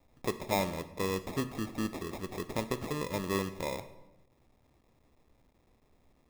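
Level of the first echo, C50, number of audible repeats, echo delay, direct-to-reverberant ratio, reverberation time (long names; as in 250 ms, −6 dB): no echo audible, 13.5 dB, no echo audible, no echo audible, 11.0 dB, 0.95 s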